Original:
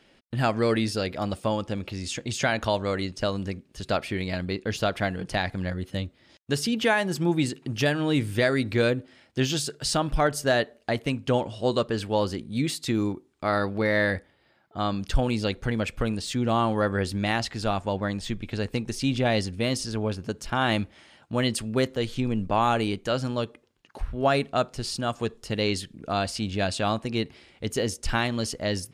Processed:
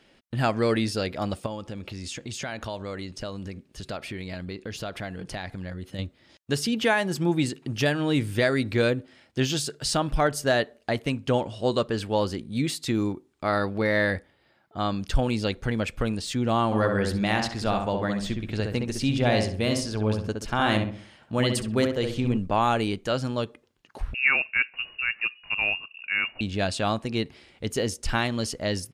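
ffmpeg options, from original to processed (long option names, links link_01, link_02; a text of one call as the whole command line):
ffmpeg -i in.wav -filter_complex "[0:a]asettb=1/sr,asplit=3[link_01][link_02][link_03];[link_01]atrim=end=1.464[link_04];[link_02]atrim=start=1.46:end=5.99,asetpts=PTS-STARTPTS,afade=type=in:duration=0.004:curve=qsin,afade=type=out:start_time=4.526:duration=0.004:curve=qsin,acompressor=threshold=-33dB:ratio=2.5:attack=3.2:release=140:knee=1:detection=peak[link_05];[link_03]atrim=start=5.986[link_06];[link_04][link_05]acrossfade=duration=0.004:curve1=hsin:curve2=qsin[link_07];[link_07][link_06]acrossfade=duration=0.004:curve1=qsin:curve2=hsin,asplit=3[link_08][link_09][link_10];[link_08]afade=type=out:start_time=16.71:duration=0.02[link_11];[link_09]asplit=2[link_12][link_13];[link_13]adelay=65,lowpass=frequency=1800:poles=1,volume=-3.5dB,asplit=2[link_14][link_15];[link_15]adelay=65,lowpass=frequency=1800:poles=1,volume=0.4,asplit=2[link_16][link_17];[link_17]adelay=65,lowpass=frequency=1800:poles=1,volume=0.4,asplit=2[link_18][link_19];[link_19]adelay=65,lowpass=frequency=1800:poles=1,volume=0.4,asplit=2[link_20][link_21];[link_21]adelay=65,lowpass=frequency=1800:poles=1,volume=0.4[link_22];[link_12][link_14][link_16][link_18][link_20][link_22]amix=inputs=6:normalize=0,afade=type=in:start_time=16.71:duration=0.02,afade=type=out:start_time=22.36:duration=0.02[link_23];[link_10]afade=type=in:start_time=22.36:duration=0.02[link_24];[link_11][link_23][link_24]amix=inputs=3:normalize=0,asettb=1/sr,asplit=3[link_25][link_26][link_27];[link_25]atrim=end=24.144[link_28];[link_26]atrim=start=24.14:end=26.41,asetpts=PTS-STARTPTS,afade=type=in:duration=0.004:curve=qsin,afade=type=out:start_time=2.266:duration=0.004:curve=qsin,lowpass=frequency=2500:width_type=q:width=0.5098,lowpass=frequency=2500:width_type=q:width=0.6013,lowpass=frequency=2500:width_type=q:width=0.9,lowpass=frequency=2500:width_type=q:width=2.563,afreqshift=-2900[link_29];[link_27]atrim=start=26.406[link_30];[link_28][link_29]acrossfade=duration=0.004:curve1=hsin:curve2=qsin[link_31];[link_31][link_30]acrossfade=duration=0.004:curve1=qsin:curve2=hsin" out.wav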